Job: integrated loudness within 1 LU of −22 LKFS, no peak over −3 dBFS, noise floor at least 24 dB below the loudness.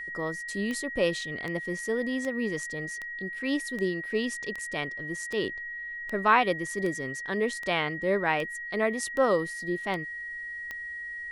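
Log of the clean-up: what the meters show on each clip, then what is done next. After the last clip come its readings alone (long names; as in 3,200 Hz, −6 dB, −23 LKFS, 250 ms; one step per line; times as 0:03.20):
number of clicks 14; interfering tone 1,900 Hz; level of the tone −35 dBFS; integrated loudness −29.5 LKFS; sample peak −8.5 dBFS; target loudness −22.0 LKFS
→ click removal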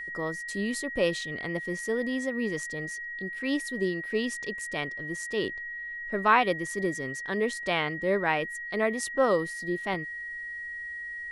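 number of clicks 0; interfering tone 1,900 Hz; level of the tone −35 dBFS
→ notch filter 1,900 Hz, Q 30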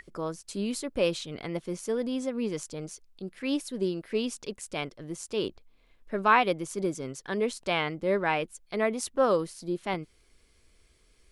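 interfering tone none found; integrated loudness −30.5 LKFS; sample peak −9.0 dBFS; target loudness −22.0 LKFS
→ level +8.5 dB
brickwall limiter −3 dBFS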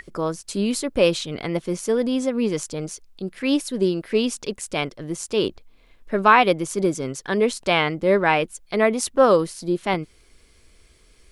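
integrated loudness −22.0 LKFS; sample peak −3.0 dBFS; background noise floor −55 dBFS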